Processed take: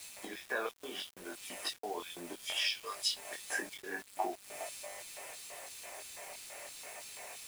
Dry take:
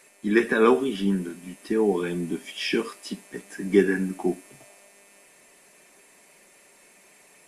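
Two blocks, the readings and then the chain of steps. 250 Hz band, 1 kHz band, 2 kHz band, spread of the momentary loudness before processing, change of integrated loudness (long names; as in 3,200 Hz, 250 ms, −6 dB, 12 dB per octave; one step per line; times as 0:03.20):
−25.5 dB, −8.5 dB, −9.0 dB, 17 LU, −15.0 dB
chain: in parallel at −1 dB: brickwall limiter −15 dBFS, peak gain reduction 9 dB
on the sum: downward compressor 16 to 1, threshold −31 dBFS, peak gain reduction 22.5 dB
auto-filter high-pass square 3 Hz 650–3,800 Hz
chorus effect 0.71 Hz, delay 20 ms, depth 4 ms
bit reduction 9 bits
level +3.5 dB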